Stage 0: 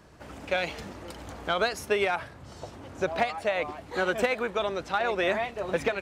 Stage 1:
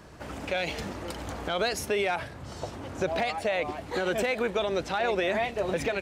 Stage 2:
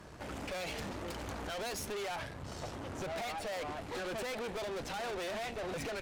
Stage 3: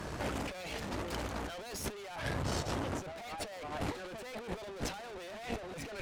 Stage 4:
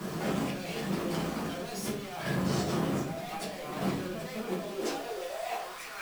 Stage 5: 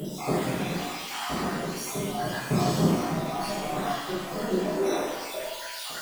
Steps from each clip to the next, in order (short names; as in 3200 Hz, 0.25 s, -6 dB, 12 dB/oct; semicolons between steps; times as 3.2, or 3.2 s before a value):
dynamic EQ 1200 Hz, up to -6 dB, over -43 dBFS, Q 1.6; limiter -23.5 dBFS, peak gain reduction 10 dB; gain +5 dB
tube stage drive 38 dB, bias 0.7; gain +1 dB
negative-ratio compressor -44 dBFS, ratio -0.5; gain +5.5 dB
high-pass sweep 170 Hz -> 1100 Hz, 4.27–5.78; bit-crush 8-bit; shoebox room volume 47 m³, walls mixed, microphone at 1.1 m; gain -3.5 dB
random spectral dropouts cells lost 65%; upward compressor, threshold -38 dBFS; shimmer reverb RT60 1.1 s, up +7 st, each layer -8 dB, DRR -8 dB